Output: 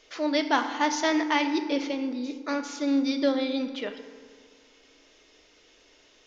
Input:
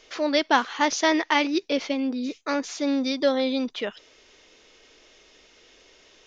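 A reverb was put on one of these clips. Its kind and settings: FDN reverb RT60 1.8 s, low-frequency decay 1.05×, high-frequency decay 0.5×, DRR 6.5 dB; gain -4.5 dB

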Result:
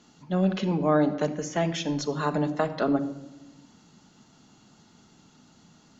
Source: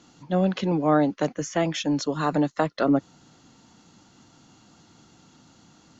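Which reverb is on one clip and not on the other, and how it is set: shoebox room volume 3600 m³, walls furnished, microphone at 1.4 m; gain -3 dB

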